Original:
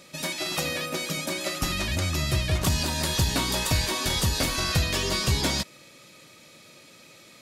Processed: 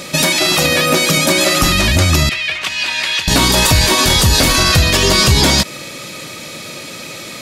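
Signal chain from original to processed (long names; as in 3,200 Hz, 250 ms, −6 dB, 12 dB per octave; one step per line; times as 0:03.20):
downward compressor, threshold −25 dBFS, peak gain reduction 7 dB
0:02.29–0:03.28: resonant band-pass 2,400 Hz, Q 2.3
boost into a limiter +22.5 dB
level −1 dB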